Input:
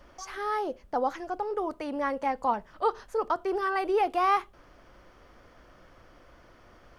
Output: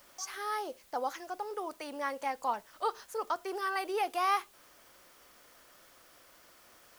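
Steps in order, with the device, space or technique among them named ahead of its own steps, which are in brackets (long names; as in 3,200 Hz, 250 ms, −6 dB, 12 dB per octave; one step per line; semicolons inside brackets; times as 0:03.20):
turntable without a phono preamp (RIAA equalisation recording; white noise bed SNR 26 dB)
level −5 dB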